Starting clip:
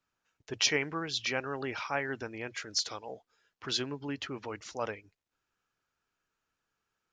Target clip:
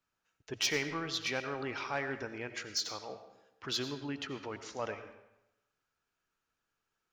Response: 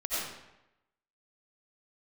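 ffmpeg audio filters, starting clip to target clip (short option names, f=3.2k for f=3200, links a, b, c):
-filter_complex "[0:a]asoftclip=type=tanh:threshold=-21dB,asplit=2[a][b];[1:a]atrim=start_sample=2205[c];[b][c]afir=irnorm=-1:irlink=0,volume=-14.5dB[d];[a][d]amix=inputs=2:normalize=0,volume=-3dB"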